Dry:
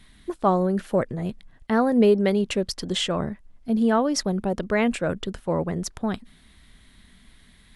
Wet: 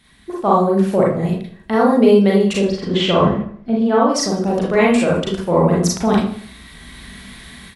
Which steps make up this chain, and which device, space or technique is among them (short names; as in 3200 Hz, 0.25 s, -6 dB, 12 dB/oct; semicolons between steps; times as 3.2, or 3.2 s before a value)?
2.53–4.08 LPF 2400 Hz -> 4000 Hz 12 dB/oct; far laptop microphone (reverb RT60 0.45 s, pre-delay 33 ms, DRR -4.5 dB; HPF 150 Hz 6 dB/oct; AGC gain up to 14 dB); dynamic EQ 1700 Hz, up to -6 dB, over -39 dBFS, Q 3.1; feedback echo 79 ms, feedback 44%, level -15 dB